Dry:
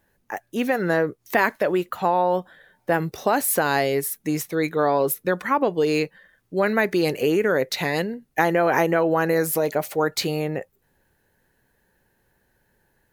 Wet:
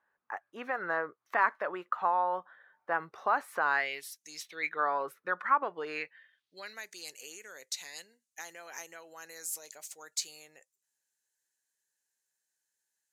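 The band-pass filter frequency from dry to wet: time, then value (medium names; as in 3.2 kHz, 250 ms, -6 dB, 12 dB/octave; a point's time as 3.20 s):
band-pass filter, Q 2.9
3.69 s 1.2 kHz
4.23 s 6.8 kHz
4.83 s 1.3 kHz
5.82 s 1.3 kHz
6.87 s 7.1 kHz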